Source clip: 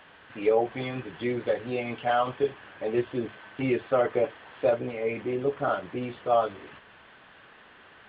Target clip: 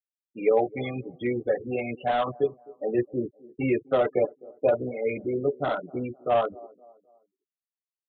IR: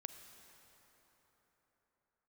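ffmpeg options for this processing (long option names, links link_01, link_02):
-filter_complex "[0:a]afftfilt=real='re*gte(hypot(re,im),0.0355)':imag='im*gte(hypot(re,im),0.0355)':win_size=1024:overlap=0.75,acrossover=split=170|890[link_01][link_02][link_03];[link_02]aecho=1:1:258|516|774:0.0891|0.0348|0.0136[link_04];[link_03]aeval=exprs='0.0299*(abs(mod(val(0)/0.0299+3,4)-2)-1)':channel_layout=same[link_05];[link_01][link_04][link_05]amix=inputs=3:normalize=0,aresample=8000,aresample=44100,volume=1.5dB"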